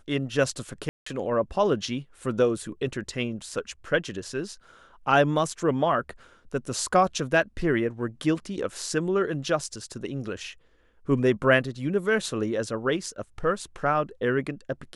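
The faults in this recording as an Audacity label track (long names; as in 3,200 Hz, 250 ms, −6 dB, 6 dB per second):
0.890000	1.060000	drop-out 174 ms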